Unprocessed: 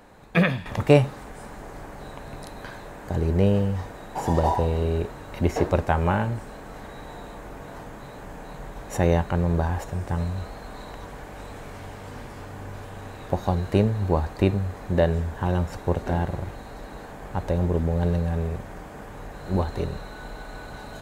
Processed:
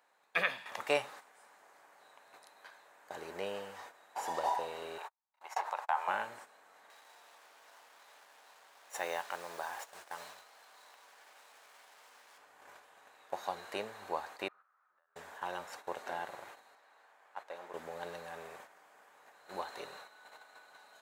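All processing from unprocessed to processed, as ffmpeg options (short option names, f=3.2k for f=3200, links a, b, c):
-filter_complex "[0:a]asettb=1/sr,asplit=3[a][b][c];[a]atrim=end=4.984[d];[b]atrim=start=4.98:end=6.08,asetpts=PTS-STARTPTS,afade=t=in:d=0.004:c=qsin,afade=t=out:st=1.096:d=0.004:c=qsin,agate=range=-45dB:threshold=-33dB:ratio=16:release=100:detection=peak,acompressor=threshold=-21dB:ratio=16:attack=3.2:release=140:knee=1:detection=peak,highpass=f=870:t=q:w=3.6[e];[c]atrim=start=6.076[f];[d][e]acrossfade=d=0.004:c1=hsin:c2=qsin[g];[g][f]acrossfade=d=0.004:c1=qsin:c2=hsin,asettb=1/sr,asplit=3[h][i][j];[h]atrim=end=6.904[k];[i]atrim=start=6.9:end=12.38,asetpts=PTS-STARTPTS,afade=t=in:d=0.004:c=qsin,afade=t=out:st=5.476:d=0.004:c=qsin,acrusher=bits=6:mix=0:aa=0.5,acompressor=mode=upward:threshold=-33dB:ratio=2.5:attack=3.2:release=140:knee=2.83:detection=peak,lowshelf=f=280:g=-9.5[l];[j]atrim=start=12.376[m];[k][l]acrossfade=d=0.004:c1=hsin:c2=qsin[n];[n][m]acrossfade=d=0.004:c1=qsin:c2=hsin,asettb=1/sr,asplit=3[o][p][q];[o]atrim=end=14.484[r];[p]atrim=start=14.48:end=15.16,asetpts=PTS-STARTPTS,afade=t=in:d=0.004:c=qsin,afade=t=out:st=0.676:d=0.004:c=qsin,bandpass=f=1.3k:t=q:w=10,acompressor=threshold=-53dB:ratio=8:attack=3.2:release=140:knee=1:detection=peak[s];[q]atrim=start=15.156[t];[r][s]acrossfade=d=0.004:c1=hsin:c2=qsin[u];[u][t]acrossfade=d=0.004:c1=qsin:c2=hsin,asettb=1/sr,asplit=3[v][w][x];[v]atrim=end=16.754[y];[w]atrim=start=16.75:end=17.74,asetpts=PTS-STARTPTS,afade=t=in:d=0.004:c=qsin,afade=t=out:st=0.986:d=0.004:c=qsin,highpass=f=740:p=1,highshelf=f=4k:g=-9.5[z];[x]atrim=start=17.736[aa];[y][z]acrossfade=d=0.004:c1=hsin:c2=qsin[ab];[ab][aa]acrossfade=d=0.004:c1=qsin:c2=hsin,agate=range=-10dB:threshold=-35dB:ratio=16:detection=peak,highpass=840,volume=-5.5dB"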